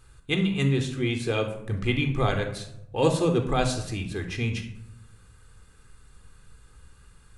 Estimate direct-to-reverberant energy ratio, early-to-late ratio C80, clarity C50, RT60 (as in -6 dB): 5.5 dB, 12.0 dB, 9.0 dB, 0.85 s